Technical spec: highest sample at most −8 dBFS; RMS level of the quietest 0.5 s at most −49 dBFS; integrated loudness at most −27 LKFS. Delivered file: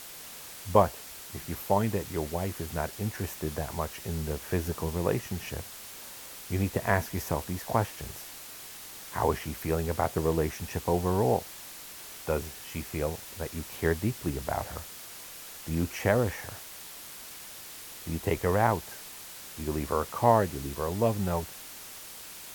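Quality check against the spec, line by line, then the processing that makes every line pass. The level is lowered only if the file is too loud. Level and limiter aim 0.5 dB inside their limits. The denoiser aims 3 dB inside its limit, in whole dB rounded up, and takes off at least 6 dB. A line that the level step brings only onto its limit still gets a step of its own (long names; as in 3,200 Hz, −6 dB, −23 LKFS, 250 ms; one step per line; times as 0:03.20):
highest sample −6.5 dBFS: out of spec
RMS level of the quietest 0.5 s −45 dBFS: out of spec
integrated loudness −31.0 LKFS: in spec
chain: broadband denoise 7 dB, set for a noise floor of −45 dBFS
brickwall limiter −8.5 dBFS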